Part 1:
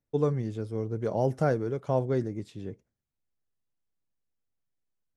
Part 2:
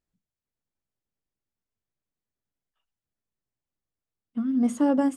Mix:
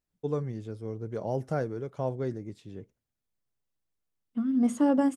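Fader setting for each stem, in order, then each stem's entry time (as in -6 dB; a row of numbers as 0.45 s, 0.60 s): -4.5 dB, -1.5 dB; 0.10 s, 0.00 s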